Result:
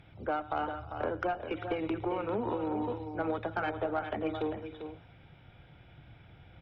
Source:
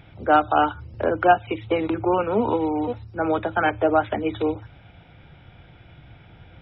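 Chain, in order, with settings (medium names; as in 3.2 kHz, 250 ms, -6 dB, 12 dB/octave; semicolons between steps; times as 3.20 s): compression 8:1, threshold -21 dBFS, peak gain reduction 11 dB; multi-tap echo 109/314/397/448 ms -18.5/-19/-8/-18.5 dB; Chebyshev shaper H 4 -24 dB, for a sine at -12 dBFS; trim -8 dB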